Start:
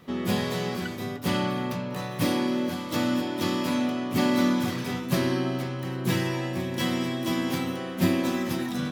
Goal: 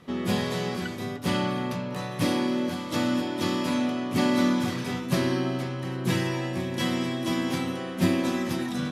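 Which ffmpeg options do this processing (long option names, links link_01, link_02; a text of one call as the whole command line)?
ffmpeg -i in.wav -af "lowpass=frequency=12000:width=0.5412,lowpass=frequency=12000:width=1.3066" out.wav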